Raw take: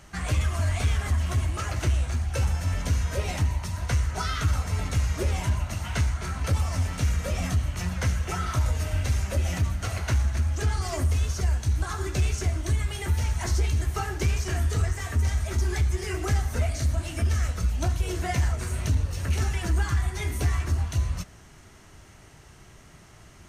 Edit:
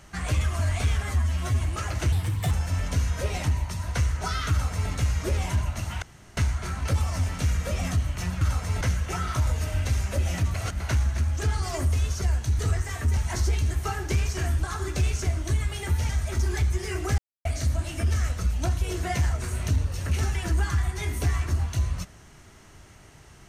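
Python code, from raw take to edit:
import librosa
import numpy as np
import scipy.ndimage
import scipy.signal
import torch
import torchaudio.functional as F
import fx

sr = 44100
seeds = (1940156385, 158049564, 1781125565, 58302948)

y = fx.edit(x, sr, fx.stretch_span(start_s=1.03, length_s=0.38, factor=1.5),
    fx.speed_span(start_s=1.93, length_s=0.52, speed=1.33),
    fx.duplicate(start_s=4.44, length_s=0.4, to_s=8.0),
    fx.insert_room_tone(at_s=5.96, length_s=0.35),
    fx.reverse_span(start_s=9.73, length_s=0.26),
    fx.swap(start_s=11.78, length_s=1.5, other_s=14.7, other_length_s=0.58),
    fx.silence(start_s=16.37, length_s=0.27), tone=tone)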